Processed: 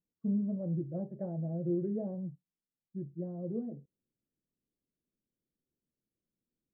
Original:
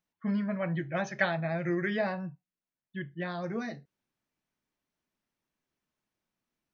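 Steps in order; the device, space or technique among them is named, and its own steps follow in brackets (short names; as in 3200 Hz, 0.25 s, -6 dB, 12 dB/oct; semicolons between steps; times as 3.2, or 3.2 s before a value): under water (LPF 460 Hz 24 dB/oct; bell 510 Hz +4 dB 0.24 oct); gain -1 dB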